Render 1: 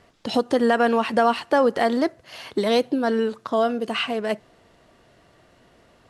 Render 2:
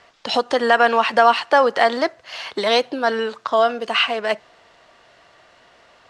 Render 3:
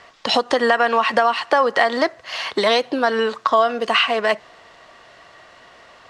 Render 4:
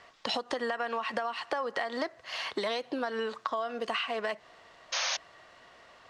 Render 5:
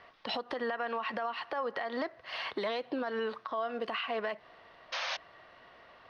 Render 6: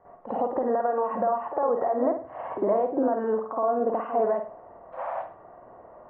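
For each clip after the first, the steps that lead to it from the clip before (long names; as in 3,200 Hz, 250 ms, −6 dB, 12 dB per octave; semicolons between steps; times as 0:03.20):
three-way crossover with the lows and the highs turned down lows −15 dB, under 580 Hz, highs −21 dB, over 7,600 Hz; level +8 dB
downward compressor 6 to 1, threshold −18 dBFS, peak gain reduction 10 dB; hollow resonant body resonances 1,100/1,900 Hz, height 7 dB; level +4.5 dB
downward compressor, threshold −20 dBFS, peak gain reduction 9 dB; sound drawn into the spectrogram noise, 0:04.92–0:05.17, 510–6,700 Hz −22 dBFS; level −9 dB
moving average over 6 samples; brickwall limiter −25 dBFS, peak gain reduction 8.5 dB
transistor ladder low-pass 990 Hz, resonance 30%; convolution reverb, pre-delay 50 ms, DRR −10 dB; level +5.5 dB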